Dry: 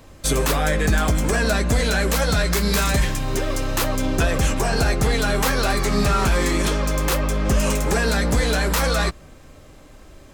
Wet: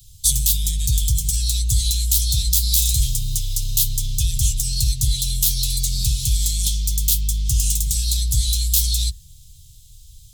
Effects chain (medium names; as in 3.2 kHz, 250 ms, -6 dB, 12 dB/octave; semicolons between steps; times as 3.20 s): Chebyshev band-stop 130–3400 Hz, order 4; treble shelf 8.3 kHz +11.5 dB; de-hum 46.6 Hz, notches 40; trim +2.5 dB